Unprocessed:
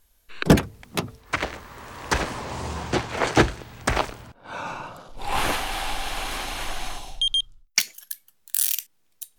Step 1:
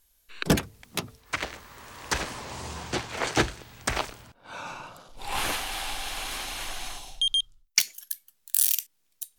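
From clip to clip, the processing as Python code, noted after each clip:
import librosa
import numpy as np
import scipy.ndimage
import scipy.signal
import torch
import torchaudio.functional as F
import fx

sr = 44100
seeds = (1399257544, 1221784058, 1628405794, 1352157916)

y = fx.high_shelf(x, sr, hz=2200.0, db=8.0)
y = F.gain(torch.from_numpy(y), -7.5).numpy()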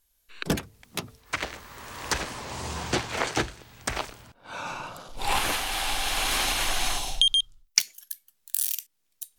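y = fx.recorder_agc(x, sr, target_db=-9.0, rise_db_per_s=8.2, max_gain_db=30)
y = F.gain(torch.from_numpy(y), -5.0).numpy()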